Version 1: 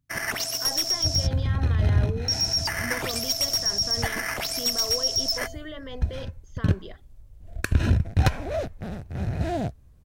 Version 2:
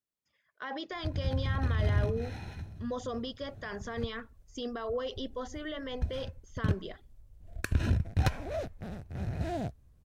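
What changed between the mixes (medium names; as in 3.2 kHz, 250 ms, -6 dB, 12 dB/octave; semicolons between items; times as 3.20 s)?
first sound: muted; second sound -7.0 dB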